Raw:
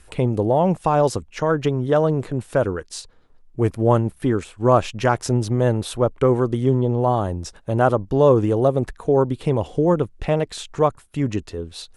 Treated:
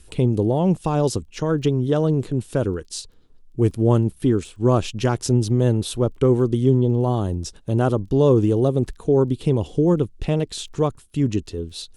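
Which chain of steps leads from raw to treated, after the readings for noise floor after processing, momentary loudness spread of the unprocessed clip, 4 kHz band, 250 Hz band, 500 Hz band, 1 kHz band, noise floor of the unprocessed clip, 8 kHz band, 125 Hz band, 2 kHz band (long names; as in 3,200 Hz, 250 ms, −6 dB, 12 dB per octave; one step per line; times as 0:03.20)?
−50 dBFS, 8 LU, +1.5 dB, +2.0 dB, −2.0 dB, −7.0 dB, −52 dBFS, +2.0 dB, +2.0 dB, −6.0 dB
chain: surface crackle 12 per second −46 dBFS
flat-topped bell 1,100 Hz −9 dB 2.4 octaves
level +2 dB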